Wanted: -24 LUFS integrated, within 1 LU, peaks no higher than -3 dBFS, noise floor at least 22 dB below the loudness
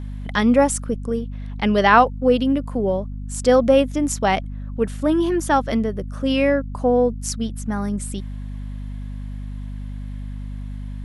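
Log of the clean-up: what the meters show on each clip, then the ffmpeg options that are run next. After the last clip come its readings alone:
hum 50 Hz; harmonics up to 250 Hz; hum level -27 dBFS; loudness -20.0 LUFS; peak -1.5 dBFS; loudness target -24.0 LUFS
-> -af "bandreject=f=50:t=h:w=4,bandreject=f=100:t=h:w=4,bandreject=f=150:t=h:w=4,bandreject=f=200:t=h:w=4,bandreject=f=250:t=h:w=4"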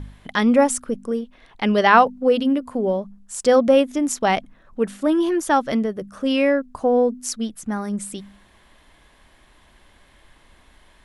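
hum none; loudness -20.0 LUFS; peak -1.0 dBFS; loudness target -24.0 LUFS
-> -af "volume=-4dB"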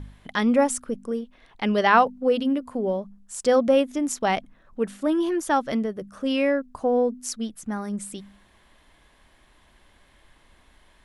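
loudness -24.0 LUFS; peak -5.0 dBFS; noise floor -59 dBFS

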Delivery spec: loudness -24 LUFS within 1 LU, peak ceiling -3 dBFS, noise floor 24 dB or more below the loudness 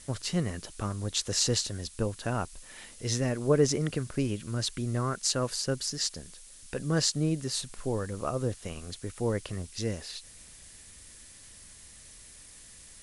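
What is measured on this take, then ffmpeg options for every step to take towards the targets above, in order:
noise floor -51 dBFS; noise floor target -55 dBFS; loudness -31.0 LUFS; peak -9.0 dBFS; loudness target -24.0 LUFS
-> -af "afftdn=nr=6:nf=-51"
-af "volume=7dB,alimiter=limit=-3dB:level=0:latency=1"

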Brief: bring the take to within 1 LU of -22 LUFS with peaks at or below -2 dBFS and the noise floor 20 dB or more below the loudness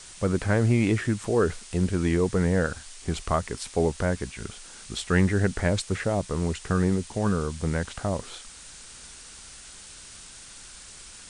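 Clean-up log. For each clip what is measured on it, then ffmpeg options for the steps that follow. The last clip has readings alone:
noise floor -46 dBFS; noise floor target -47 dBFS; loudness -26.5 LUFS; peak -8.0 dBFS; loudness target -22.0 LUFS
-> -af "afftdn=nr=6:nf=-46"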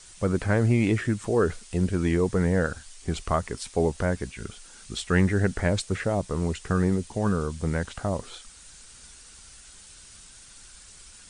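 noise floor -49 dBFS; loudness -26.5 LUFS; peak -8.0 dBFS; loudness target -22.0 LUFS
-> -af "volume=4.5dB"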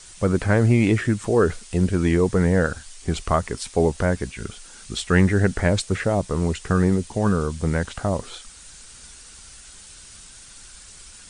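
loudness -22.0 LUFS; peak -3.5 dBFS; noise floor -45 dBFS

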